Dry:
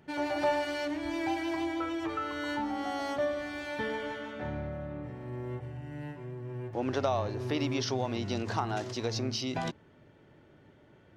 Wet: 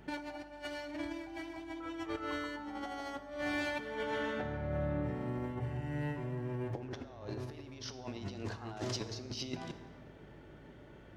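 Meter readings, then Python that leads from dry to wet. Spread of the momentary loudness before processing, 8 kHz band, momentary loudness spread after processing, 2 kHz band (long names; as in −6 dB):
10 LU, −6.0 dB, 12 LU, −4.0 dB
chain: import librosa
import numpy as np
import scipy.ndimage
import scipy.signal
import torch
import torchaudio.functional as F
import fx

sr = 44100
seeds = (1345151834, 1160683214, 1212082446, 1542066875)

y = fx.over_compress(x, sr, threshold_db=-38.0, ratio=-0.5)
y = fx.add_hum(y, sr, base_hz=50, snr_db=22)
y = fx.rev_plate(y, sr, seeds[0], rt60_s=1.9, hf_ratio=0.55, predelay_ms=0, drr_db=8.5)
y = y * librosa.db_to_amplitude(-1.5)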